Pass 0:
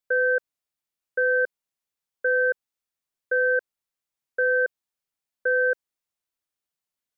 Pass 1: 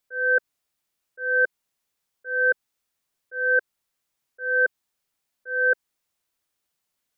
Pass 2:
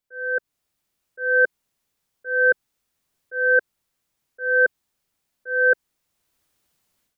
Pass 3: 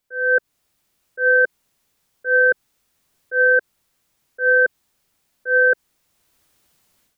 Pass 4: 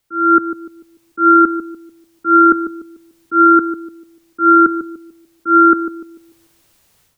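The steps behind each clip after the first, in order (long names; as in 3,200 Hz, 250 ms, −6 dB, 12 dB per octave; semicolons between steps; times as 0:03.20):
dynamic equaliser 520 Hz, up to −6 dB, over −37 dBFS, Q 2.9; volume swells 366 ms; level +8.5 dB
low-shelf EQ 360 Hz +7 dB; automatic gain control gain up to 15 dB; level −7 dB
brickwall limiter −16.5 dBFS, peak gain reduction 8.5 dB; level +8 dB
frequency shifter −170 Hz; bucket-brigade delay 147 ms, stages 1,024, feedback 36%, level −9 dB; level +6.5 dB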